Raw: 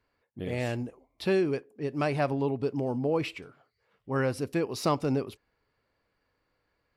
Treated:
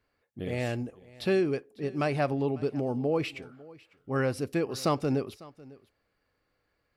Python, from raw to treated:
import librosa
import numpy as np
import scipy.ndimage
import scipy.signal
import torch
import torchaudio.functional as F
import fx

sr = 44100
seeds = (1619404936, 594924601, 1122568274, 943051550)

p1 = fx.notch(x, sr, hz=960.0, q=9.8)
y = p1 + fx.echo_single(p1, sr, ms=550, db=-21.5, dry=0)